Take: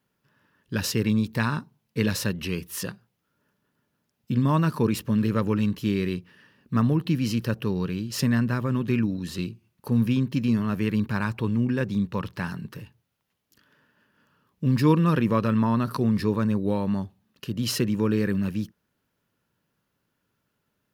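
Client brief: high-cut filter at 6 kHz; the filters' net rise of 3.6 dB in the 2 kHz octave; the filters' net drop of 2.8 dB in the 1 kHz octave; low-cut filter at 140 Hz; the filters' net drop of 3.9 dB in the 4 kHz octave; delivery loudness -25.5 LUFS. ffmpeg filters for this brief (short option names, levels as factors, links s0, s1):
-af "highpass=140,lowpass=6000,equalizer=f=1000:t=o:g=-5.5,equalizer=f=2000:t=o:g=8.5,equalizer=f=4000:t=o:g=-7,volume=1.19"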